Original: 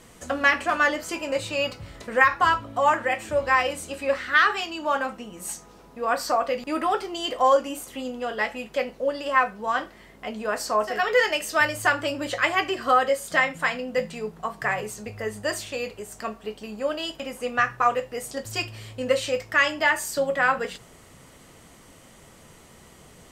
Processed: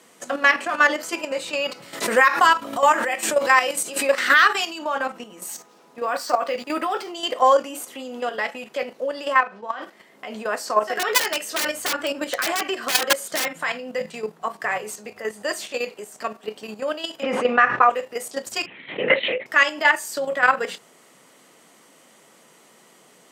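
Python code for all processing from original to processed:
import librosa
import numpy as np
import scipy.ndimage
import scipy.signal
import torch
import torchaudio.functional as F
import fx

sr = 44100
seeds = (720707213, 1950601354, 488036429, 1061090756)

y = fx.chain(x, sr, fx.high_shelf(hz=5600.0, db=10.0),
    fx.pre_swell(db_per_s=79.0), at=(1.82, 4.79))
y = fx.chain(y, sr, fx.high_shelf(hz=2600.0, db=3.5),
    fx.resample_linear(factor=2), at=(5.45, 7.12))
y = fx.chain(y, sr, fx.level_steps(step_db=11),
    fx.bandpass_edges(low_hz=130.0, high_hz=4700.0),
    fx.room_flutter(wall_m=7.1, rt60_s=0.2), at=(9.4, 9.82))
y = fx.chain(y, sr, fx.peak_eq(hz=1500.0, db=2.5, octaves=0.24),
    fx.notch(hz=4800.0, q=29.0),
    fx.overflow_wrap(gain_db=15.5), at=(10.86, 13.59))
y = fx.chain(y, sr, fx.lowpass(hz=2600.0, slope=12),
    fx.env_flatten(amount_pct=70), at=(17.23, 17.9))
y = fx.chain(y, sr, fx.peak_eq(hz=2000.0, db=13.0, octaves=0.36),
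    fx.lpc_vocoder(seeds[0], excitation='whisper', order=10),
    fx.pre_swell(db_per_s=86.0), at=(18.66, 19.46))
y = scipy.signal.sosfilt(scipy.signal.bessel(8, 280.0, 'highpass', norm='mag', fs=sr, output='sos'), y)
y = fx.level_steps(y, sr, step_db=10)
y = y * 10.0 ** (6.5 / 20.0)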